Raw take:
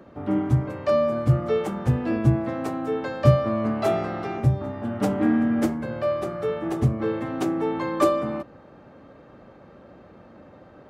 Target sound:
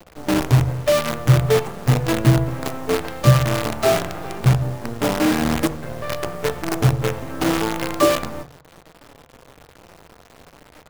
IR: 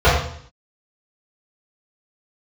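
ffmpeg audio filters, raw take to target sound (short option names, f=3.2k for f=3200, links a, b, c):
-filter_complex "[0:a]flanger=delay=5.7:depth=2:regen=-24:speed=0.91:shape=triangular,acrusher=bits=5:dc=4:mix=0:aa=0.000001,asplit=2[a][b];[1:a]atrim=start_sample=2205[c];[b][c]afir=irnorm=-1:irlink=0,volume=-38.5dB[d];[a][d]amix=inputs=2:normalize=0,volume=6dB"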